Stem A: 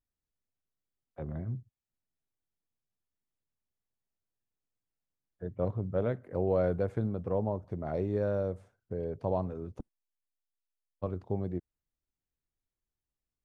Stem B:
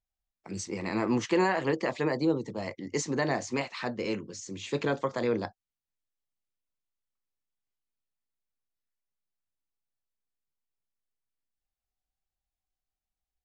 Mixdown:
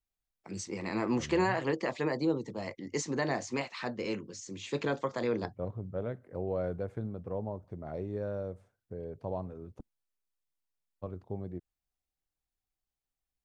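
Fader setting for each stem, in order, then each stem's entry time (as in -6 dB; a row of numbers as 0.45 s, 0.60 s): -5.5 dB, -3.0 dB; 0.00 s, 0.00 s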